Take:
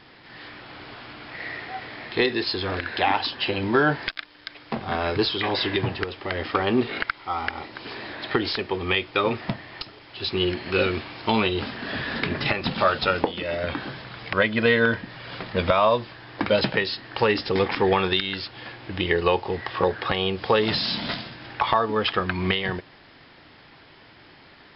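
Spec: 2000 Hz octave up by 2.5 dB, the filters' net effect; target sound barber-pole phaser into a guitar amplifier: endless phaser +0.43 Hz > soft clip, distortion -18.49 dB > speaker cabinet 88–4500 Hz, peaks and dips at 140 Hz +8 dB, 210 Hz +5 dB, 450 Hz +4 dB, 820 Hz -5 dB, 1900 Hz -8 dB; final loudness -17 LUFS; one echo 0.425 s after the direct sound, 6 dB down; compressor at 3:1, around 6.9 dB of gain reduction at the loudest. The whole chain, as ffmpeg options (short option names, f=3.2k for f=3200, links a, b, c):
-filter_complex "[0:a]equalizer=f=2k:t=o:g=8,acompressor=threshold=-23dB:ratio=3,aecho=1:1:425:0.501,asplit=2[a][b];[b]afreqshift=0.43[c];[a][c]amix=inputs=2:normalize=1,asoftclip=threshold=-18dB,highpass=88,equalizer=f=140:t=q:w=4:g=8,equalizer=f=210:t=q:w=4:g=5,equalizer=f=450:t=q:w=4:g=4,equalizer=f=820:t=q:w=4:g=-5,equalizer=f=1.9k:t=q:w=4:g=-8,lowpass=f=4.5k:w=0.5412,lowpass=f=4.5k:w=1.3066,volume=14dB"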